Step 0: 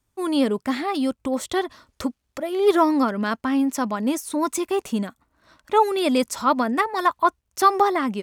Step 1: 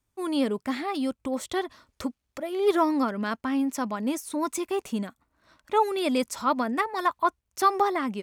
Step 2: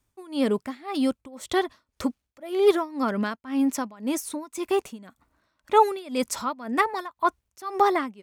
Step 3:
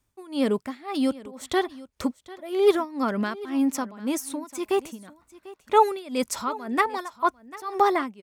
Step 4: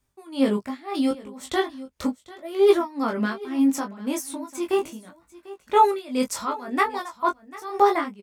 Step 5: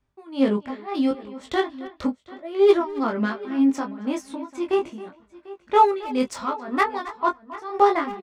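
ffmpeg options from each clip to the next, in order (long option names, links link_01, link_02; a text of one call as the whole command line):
ffmpeg -i in.wav -af "equalizer=frequency=2300:width_type=o:width=0.28:gain=2,volume=-5dB" out.wav
ffmpeg -i in.wav -af "tremolo=f=1.9:d=0.92,volume=5dB" out.wav
ffmpeg -i in.wav -af "aecho=1:1:745:0.112" out.wav
ffmpeg -i in.wav -filter_complex "[0:a]flanger=delay=20:depth=3.6:speed=0.73,asplit=2[link_01][link_02];[link_02]adelay=15,volume=-8.5dB[link_03];[link_01][link_03]amix=inputs=2:normalize=0,volume=3dB" out.wav
ffmpeg -i in.wav -filter_complex "[0:a]adynamicsmooth=sensitivity=2:basefreq=3800,asplit=2[link_01][link_02];[link_02]adelay=270,highpass=300,lowpass=3400,asoftclip=type=hard:threshold=-14.5dB,volume=-16dB[link_03];[link_01][link_03]amix=inputs=2:normalize=0,volume=1dB" out.wav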